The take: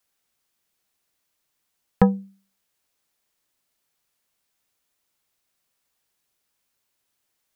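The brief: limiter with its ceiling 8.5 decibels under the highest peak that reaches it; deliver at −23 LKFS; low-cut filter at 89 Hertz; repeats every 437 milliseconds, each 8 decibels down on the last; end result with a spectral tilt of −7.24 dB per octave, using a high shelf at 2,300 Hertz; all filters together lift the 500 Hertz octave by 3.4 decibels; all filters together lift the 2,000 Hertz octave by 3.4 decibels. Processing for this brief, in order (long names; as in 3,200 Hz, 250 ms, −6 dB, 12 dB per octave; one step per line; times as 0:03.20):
high-pass filter 89 Hz
parametric band 500 Hz +3.5 dB
parametric band 2,000 Hz +7 dB
high-shelf EQ 2,300 Hz −7 dB
brickwall limiter −10 dBFS
repeating echo 437 ms, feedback 40%, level −8 dB
level +7 dB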